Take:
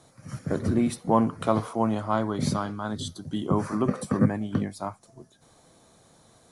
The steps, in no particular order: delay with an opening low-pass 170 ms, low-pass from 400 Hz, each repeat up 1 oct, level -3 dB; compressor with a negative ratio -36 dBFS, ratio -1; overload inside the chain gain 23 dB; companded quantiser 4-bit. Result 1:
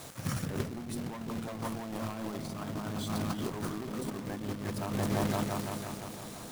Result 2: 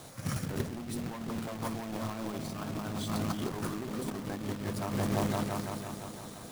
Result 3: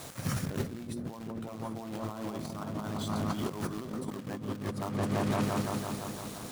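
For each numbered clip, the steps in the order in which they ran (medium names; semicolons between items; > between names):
overload inside the chain > delay with an opening low-pass > companded quantiser > compressor with a negative ratio; overload inside the chain > delay with an opening low-pass > compressor with a negative ratio > companded quantiser; companded quantiser > delay with an opening low-pass > compressor with a negative ratio > overload inside the chain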